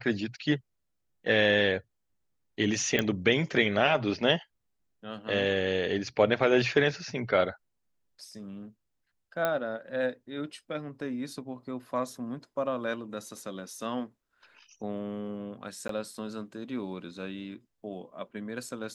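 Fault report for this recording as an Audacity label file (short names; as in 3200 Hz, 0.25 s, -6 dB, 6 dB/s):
2.990000	2.990000	pop -12 dBFS
9.450000	9.450000	pop -14 dBFS
15.880000	15.890000	gap 13 ms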